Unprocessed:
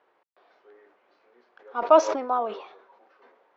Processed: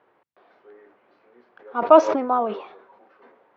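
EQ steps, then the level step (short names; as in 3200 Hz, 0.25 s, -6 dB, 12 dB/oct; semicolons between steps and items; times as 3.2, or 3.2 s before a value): HPF 78 Hz; tone controls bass +13 dB, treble -10 dB; +3.5 dB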